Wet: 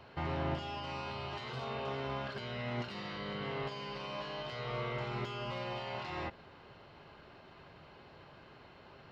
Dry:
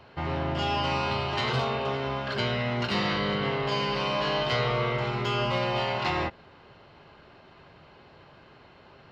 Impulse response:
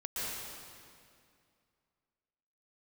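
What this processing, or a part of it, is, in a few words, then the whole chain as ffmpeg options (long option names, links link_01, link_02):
de-esser from a sidechain: -filter_complex "[0:a]asplit=2[link_01][link_02];[link_02]highpass=5600,apad=whole_len=401780[link_03];[link_01][link_03]sidechaincompress=threshold=-56dB:ratio=4:attack=3.4:release=45,volume=-3dB"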